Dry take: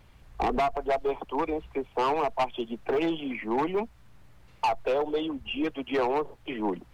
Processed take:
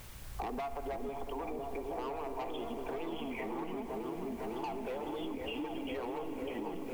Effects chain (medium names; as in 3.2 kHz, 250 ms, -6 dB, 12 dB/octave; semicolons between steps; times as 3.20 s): peak limiter -29.5 dBFS, peak gain reduction 10 dB; word length cut 10-bit, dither triangular; delay with an opening low-pass 505 ms, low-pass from 400 Hz, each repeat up 1 oct, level 0 dB; reverberation RT60 4.8 s, pre-delay 47 ms, DRR 9 dB; compression 6:1, threshold -41 dBFS, peak gain reduction 13 dB; trim +4.5 dB